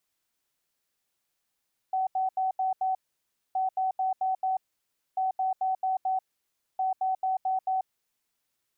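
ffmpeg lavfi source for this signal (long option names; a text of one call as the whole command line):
ffmpeg -f lavfi -i "aevalsrc='0.0631*sin(2*PI*756*t)*clip(min(mod(mod(t,1.62),0.22),0.14-mod(mod(t,1.62),0.22))/0.005,0,1)*lt(mod(t,1.62),1.1)':duration=6.48:sample_rate=44100" out.wav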